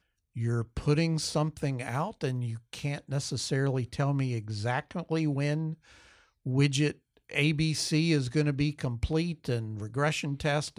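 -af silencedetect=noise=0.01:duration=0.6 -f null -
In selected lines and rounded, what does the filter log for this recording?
silence_start: 5.74
silence_end: 6.46 | silence_duration: 0.72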